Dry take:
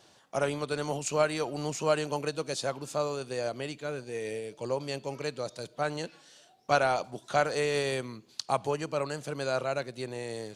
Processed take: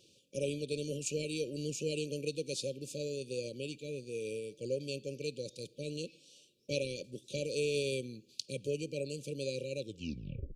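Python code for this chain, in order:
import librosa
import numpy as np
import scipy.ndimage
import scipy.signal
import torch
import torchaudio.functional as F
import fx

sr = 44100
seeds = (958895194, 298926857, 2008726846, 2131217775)

y = fx.tape_stop_end(x, sr, length_s=0.76)
y = fx.brickwall_bandstop(y, sr, low_hz=580.0, high_hz=2300.0)
y = y * 10.0 ** (-3.5 / 20.0)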